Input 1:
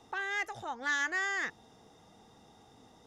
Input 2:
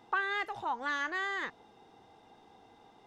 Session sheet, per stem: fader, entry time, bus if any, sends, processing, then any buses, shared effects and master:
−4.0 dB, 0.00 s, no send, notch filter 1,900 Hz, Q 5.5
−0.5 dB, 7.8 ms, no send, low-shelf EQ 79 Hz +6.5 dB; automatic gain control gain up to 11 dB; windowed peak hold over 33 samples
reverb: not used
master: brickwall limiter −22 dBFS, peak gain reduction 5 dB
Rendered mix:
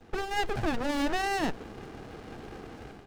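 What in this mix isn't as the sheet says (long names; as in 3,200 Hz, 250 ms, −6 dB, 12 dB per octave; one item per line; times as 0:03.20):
stem 1 −4.0 dB → −14.0 dB
stem 2 −0.5 dB → +7.0 dB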